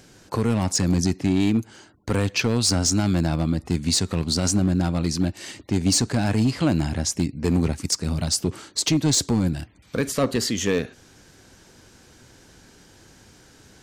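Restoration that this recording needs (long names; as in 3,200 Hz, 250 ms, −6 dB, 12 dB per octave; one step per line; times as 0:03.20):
clipped peaks rebuilt −13.5 dBFS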